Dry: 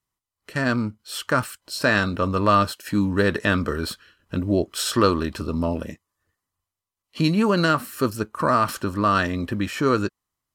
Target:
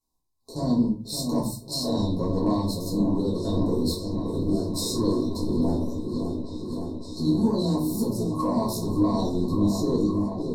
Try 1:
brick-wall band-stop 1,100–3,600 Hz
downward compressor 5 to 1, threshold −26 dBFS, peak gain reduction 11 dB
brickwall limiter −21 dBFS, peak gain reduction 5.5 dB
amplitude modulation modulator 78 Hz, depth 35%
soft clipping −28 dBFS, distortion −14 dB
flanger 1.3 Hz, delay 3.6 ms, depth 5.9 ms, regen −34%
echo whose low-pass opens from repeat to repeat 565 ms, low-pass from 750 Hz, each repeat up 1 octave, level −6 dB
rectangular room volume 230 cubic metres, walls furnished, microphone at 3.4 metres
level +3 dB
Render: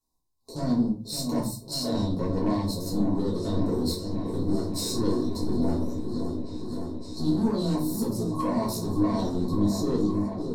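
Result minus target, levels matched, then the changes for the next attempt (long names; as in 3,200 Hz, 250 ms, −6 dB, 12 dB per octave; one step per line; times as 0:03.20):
soft clipping: distortion +13 dB
change: soft clipping −19 dBFS, distortion −28 dB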